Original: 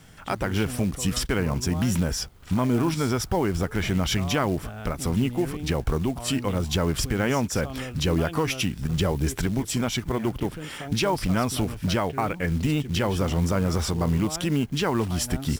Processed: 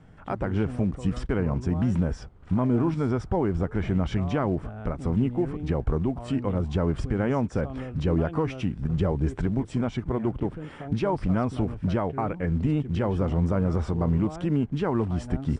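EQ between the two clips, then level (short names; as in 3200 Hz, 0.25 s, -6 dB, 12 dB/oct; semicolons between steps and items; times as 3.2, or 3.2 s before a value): steep low-pass 9500 Hz 72 dB/oct; high shelf 2200 Hz -12 dB; bell 6900 Hz -10.5 dB 2.6 oct; 0.0 dB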